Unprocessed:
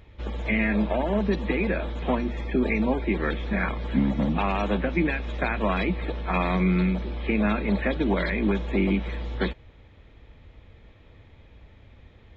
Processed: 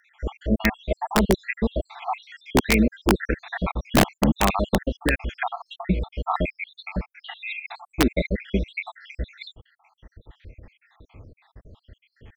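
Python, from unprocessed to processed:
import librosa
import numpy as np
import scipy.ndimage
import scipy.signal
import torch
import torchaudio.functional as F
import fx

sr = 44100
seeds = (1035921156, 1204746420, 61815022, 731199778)

y = fx.spec_dropout(x, sr, seeds[0], share_pct=77)
y = (np.mod(10.0 ** (15.5 / 20.0) * y + 1.0, 2.0) - 1.0) / 10.0 ** (15.5 / 20.0)
y = y * librosa.db_to_amplitude(6.5)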